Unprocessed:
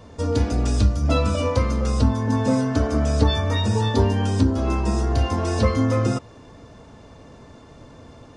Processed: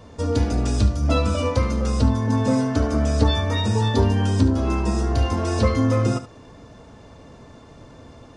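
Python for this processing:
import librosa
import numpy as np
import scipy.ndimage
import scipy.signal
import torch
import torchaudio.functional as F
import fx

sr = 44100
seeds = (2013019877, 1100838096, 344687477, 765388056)

y = x + 10.0 ** (-13.0 / 20.0) * np.pad(x, (int(72 * sr / 1000.0), 0))[:len(x)]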